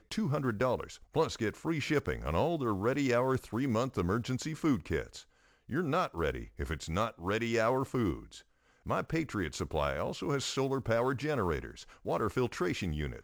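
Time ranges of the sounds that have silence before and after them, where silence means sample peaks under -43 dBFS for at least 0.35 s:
5.69–8.39 s

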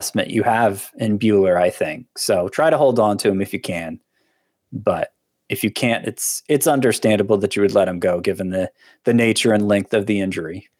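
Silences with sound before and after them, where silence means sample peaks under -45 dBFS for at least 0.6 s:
3.98–4.72 s

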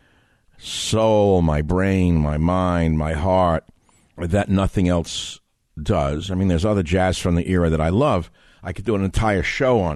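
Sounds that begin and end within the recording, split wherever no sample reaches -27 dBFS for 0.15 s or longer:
0.65–3.59 s
4.19–5.33 s
5.78–8.23 s

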